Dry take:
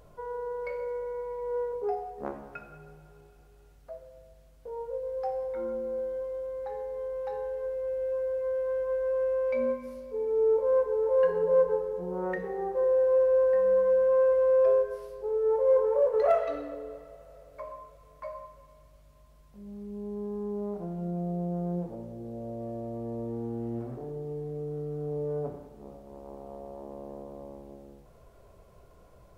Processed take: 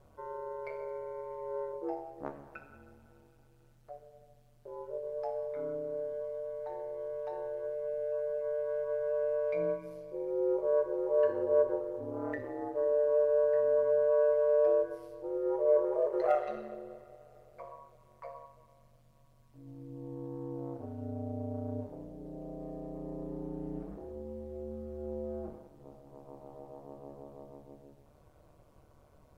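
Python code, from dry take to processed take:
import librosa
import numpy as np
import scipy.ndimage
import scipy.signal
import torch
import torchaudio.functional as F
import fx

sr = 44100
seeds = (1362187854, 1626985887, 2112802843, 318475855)

y = x * np.sin(2.0 * np.pi * 73.0 * np.arange(len(x)) / sr)
y = fx.comb_fb(y, sr, f0_hz=300.0, decay_s=0.17, harmonics='all', damping=0.0, mix_pct=50)
y = y * librosa.db_to_amplitude(2.0)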